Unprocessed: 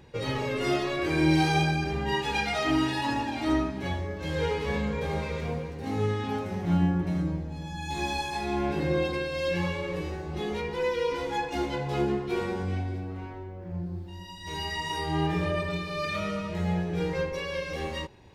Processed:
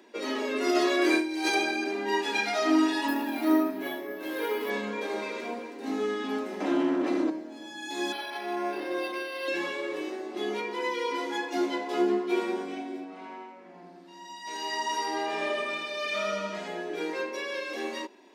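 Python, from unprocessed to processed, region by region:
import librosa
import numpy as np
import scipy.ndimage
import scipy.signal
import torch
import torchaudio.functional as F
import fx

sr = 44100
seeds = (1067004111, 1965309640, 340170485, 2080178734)

y = fx.chain(x, sr, fx.over_compress(threshold_db=-26.0, ratio=-0.5),
    fx.high_shelf(hz=3800.0, db=5.5), at=(0.69, 1.55))
y = fx.chain(y, sr, fx.high_shelf(hz=5100.0, db=-8.0),
    fx.resample_bad(factor=3, down='none', up='hold'), at=(3.08, 4.7))
y = fx.chain(y, sr, fx.lower_of_two(delay_ms=3.8),
    fx.bessel_lowpass(hz=8100.0, order=2),
    fx.env_flatten(amount_pct=70), at=(6.6, 7.3))
y = fx.chain(y, sr, fx.peak_eq(hz=260.0, db=-12.5, octaves=0.91),
    fx.resample_linear(factor=6), at=(8.12, 9.48))
y = fx.chain(y, sr, fx.lowpass(hz=9900.0, slope=12),
    fx.peak_eq(hz=350.0, db=-12.5, octaves=0.36),
    fx.echo_feedback(ms=81, feedback_pct=59, wet_db=-4.0), at=(13.04, 16.68))
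y = scipy.signal.sosfilt(scipy.signal.butter(12, 210.0, 'highpass', fs=sr, output='sos'), y)
y = y + 0.52 * np.pad(y, (int(3.0 * sr / 1000.0), 0))[:len(y)]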